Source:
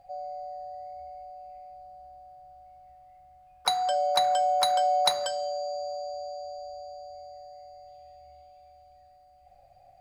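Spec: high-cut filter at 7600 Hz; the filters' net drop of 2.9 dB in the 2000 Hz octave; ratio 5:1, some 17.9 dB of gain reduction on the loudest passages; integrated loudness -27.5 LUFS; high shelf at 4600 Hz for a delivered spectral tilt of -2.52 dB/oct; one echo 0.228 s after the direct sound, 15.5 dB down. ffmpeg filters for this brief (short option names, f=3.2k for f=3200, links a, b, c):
-af "lowpass=7.6k,equalizer=f=2k:t=o:g=-5,highshelf=f=4.6k:g=7,acompressor=threshold=-40dB:ratio=5,aecho=1:1:228:0.168,volume=16dB"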